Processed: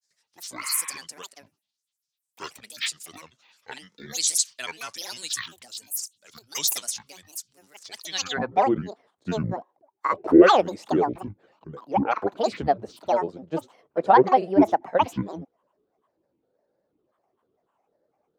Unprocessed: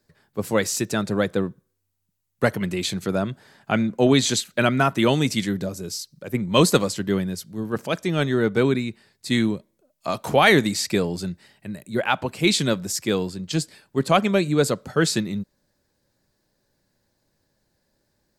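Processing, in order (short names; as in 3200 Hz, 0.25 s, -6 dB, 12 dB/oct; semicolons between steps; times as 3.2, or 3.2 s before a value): band-pass sweep 6400 Hz -> 570 Hz, 8.02–8.57; grains, spray 27 ms, pitch spread up and down by 12 st; spectral repair 0.66–0.94, 820–4100 Hz; gain +7.5 dB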